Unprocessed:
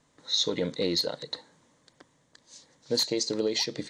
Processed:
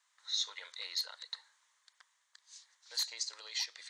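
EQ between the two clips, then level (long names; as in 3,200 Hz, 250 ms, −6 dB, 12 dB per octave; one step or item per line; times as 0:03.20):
high-pass filter 1,100 Hz 24 dB per octave
dynamic equaliser 3,900 Hz, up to −4 dB, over −38 dBFS, Q 0.9
−4.0 dB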